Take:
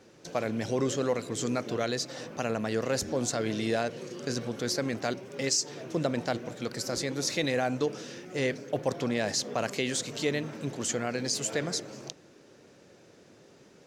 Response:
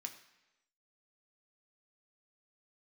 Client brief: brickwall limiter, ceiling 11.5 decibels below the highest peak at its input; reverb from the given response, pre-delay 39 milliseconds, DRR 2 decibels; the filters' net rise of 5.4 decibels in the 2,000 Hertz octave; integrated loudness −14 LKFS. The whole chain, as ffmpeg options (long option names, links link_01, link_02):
-filter_complex "[0:a]equalizer=frequency=2000:width_type=o:gain=6.5,alimiter=limit=-23.5dB:level=0:latency=1,asplit=2[link_01][link_02];[1:a]atrim=start_sample=2205,adelay=39[link_03];[link_02][link_03]afir=irnorm=-1:irlink=0,volume=1dB[link_04];[link_01][link_04]amix=inputs=2:normalize=0,volume=19dB"